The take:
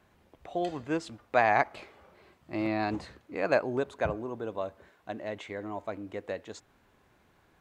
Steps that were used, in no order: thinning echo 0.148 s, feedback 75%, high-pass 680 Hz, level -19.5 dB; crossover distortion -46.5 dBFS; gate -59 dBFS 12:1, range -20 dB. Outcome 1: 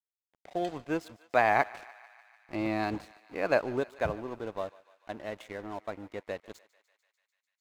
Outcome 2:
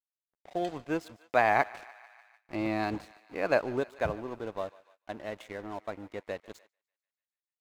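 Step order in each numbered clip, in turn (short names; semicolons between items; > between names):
gate > crossover distortion > thinning echo; crossover distortion > thinning echo > gate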